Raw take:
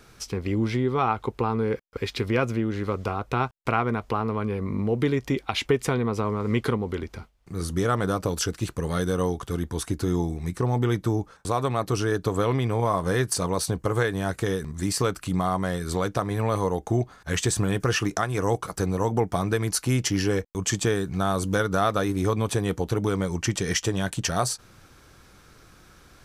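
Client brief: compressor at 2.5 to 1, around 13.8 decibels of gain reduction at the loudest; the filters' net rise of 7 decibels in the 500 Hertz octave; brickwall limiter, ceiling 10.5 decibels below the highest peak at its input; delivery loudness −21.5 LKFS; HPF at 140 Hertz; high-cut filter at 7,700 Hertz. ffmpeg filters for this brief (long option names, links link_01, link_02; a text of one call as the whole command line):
ffmpeg -i in.wav -af "highpass=140,lowpass=7700,equalizer=frequency=500:width_type=o:gain=8.5,acompressor=threshold=-34dB:ratio=2.5,volume=13.5dB,alimiter=limit=-10dB:level=0:latency=1" out.wav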